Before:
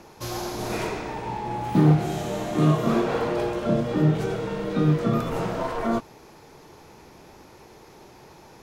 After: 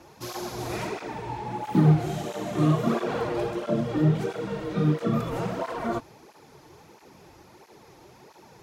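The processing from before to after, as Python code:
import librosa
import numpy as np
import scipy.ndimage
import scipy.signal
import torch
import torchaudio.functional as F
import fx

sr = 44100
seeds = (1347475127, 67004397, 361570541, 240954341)

y = fx.flanger_cancel(x, sr, hz=1.5, depth_ms=5.3)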